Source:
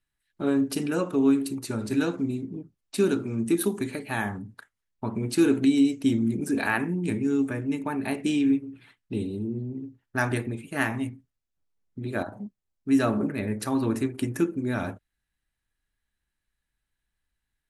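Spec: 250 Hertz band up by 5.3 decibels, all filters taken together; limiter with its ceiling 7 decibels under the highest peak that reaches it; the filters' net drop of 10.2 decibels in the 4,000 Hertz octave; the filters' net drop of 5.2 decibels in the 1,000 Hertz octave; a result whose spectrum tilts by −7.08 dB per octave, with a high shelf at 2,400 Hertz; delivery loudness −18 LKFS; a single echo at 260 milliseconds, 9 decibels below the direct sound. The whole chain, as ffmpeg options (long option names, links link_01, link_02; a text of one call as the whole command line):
ffmpeg -i in.wav -af "equalizer=frequency=250:width_type=o:gain=6.5,equalizer=frequency=1000:width_type=o:gain=-6,highshelf=frequency=2400:gain=-6,equalizer=frequency=4000:width_type=o:gain=-7.5,alimiter=limit=-14dB:level=0:latency=1,aecho=1:1:260:0.355,volume=6.5dB" out.wav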